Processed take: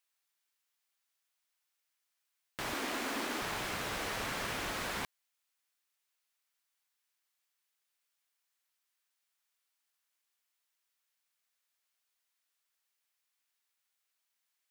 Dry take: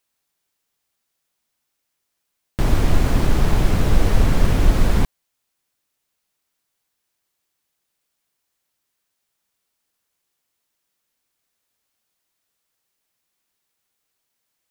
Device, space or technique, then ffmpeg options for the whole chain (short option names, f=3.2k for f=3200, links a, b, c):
filter by subtraction: -filter_complex "[0:a]asplit=2[a][b];[b]lowpass=1.7k,volume=-1[c];[a][c]amix=inputs=2:normalize=0,asettb=1/sr,asplit=3[d][e][f];[d]atrim=end=2.734[g];[e]atrim=start=2.73:end=3.42,asetpts=PTS-STARTPTS,afade=t=in:d=0.004:c=qsin,afade=t=out:st=0.686:d=0.004:c=qsin,lowshelf=f=180:t=q:w=3:g=-11[h];[f]atrim=start=3.416[i];[g][h]acrossfade=d=0.004:c1=hsin:c2=qsin[j];[j][i]acrossfade=d=0.004:c1=qsin:c2=hsin,volume=-7.5dB"